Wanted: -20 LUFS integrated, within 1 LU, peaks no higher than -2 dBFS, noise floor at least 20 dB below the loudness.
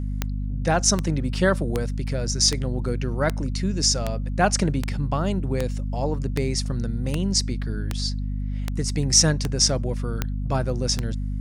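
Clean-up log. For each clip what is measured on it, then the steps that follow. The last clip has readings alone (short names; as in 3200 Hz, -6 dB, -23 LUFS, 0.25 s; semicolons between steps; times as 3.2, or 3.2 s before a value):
clicks 15; hum 50 Hz; harmonics up to 250 Hz; hum level -24 dBFS; loudness -24.0 LUFS; peak -4.5 dBFS; loudness target -20.0 LUFS
-> de-click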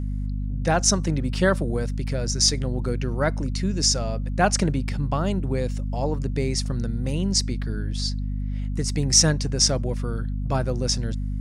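clicks 0; hum 50 Hz; harmonics up to 250 Hz; hum level -24 dBFS
-> notches 50/100/150/200/250 Hz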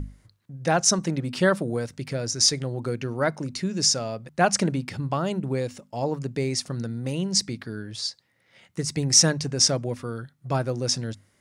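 hum none; loudness -24.5 LUFS; peak -4.5 dBFS; loudness target -20.0 LUFS
-> gain +4.5 dB; limiter -2 dBFS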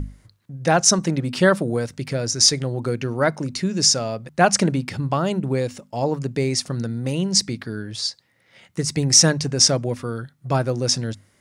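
loudness -20.5 LUFS; peak -2.0 dBFS; noise floor -62 dBFS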